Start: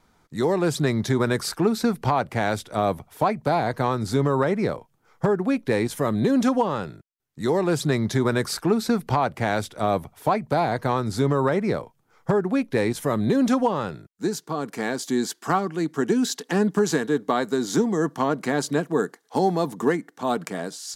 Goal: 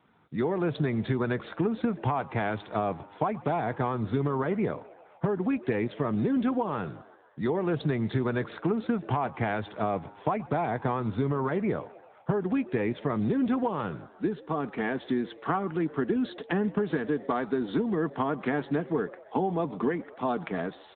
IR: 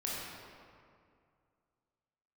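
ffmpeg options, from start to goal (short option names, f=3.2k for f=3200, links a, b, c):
-filter_complex "[0:a]bandreject=f=550:w=12,acompressor=threshold=-24dB:ratio=4,acrusher=bits=7:mode=log:mix=0:aa=0.000001,asplit=2[a][b];[b]asplit=5[c][d][e][f][g];[c]adelay=130,afreqshift=98,volume=-20.5dB[h];[d]adelay=260,afreqshift=196,volume=-24.7dB[i];[e]adelay=390,afreqshift=294,volume=-28.8dB[j];[f]adelay=520,afreqshift=392,volume=-33dB[k];[g]adelay=650,afreqshift=490,volume=-37.1dB[l];[h][i][j][k][l]amix=inputs=5:normalize=0[m];[a][m]amix=inputs=2:normalize=0" -ar 8000 -c:a libopencore_amrnb -b:a 10200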